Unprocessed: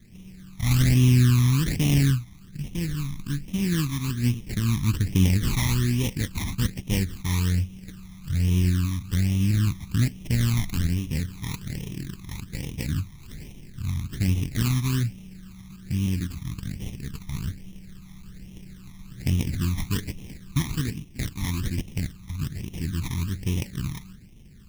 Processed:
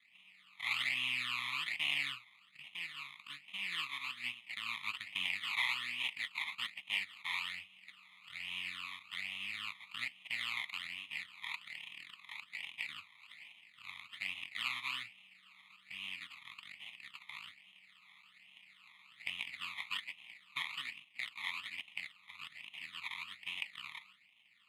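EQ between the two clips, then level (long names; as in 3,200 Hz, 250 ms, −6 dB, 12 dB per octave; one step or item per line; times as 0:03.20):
four-pole ladder band-pass 2,200 Hz, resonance 30%
phaser with its sweep stopped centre 1,600 Hz, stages 6
+12.5 dB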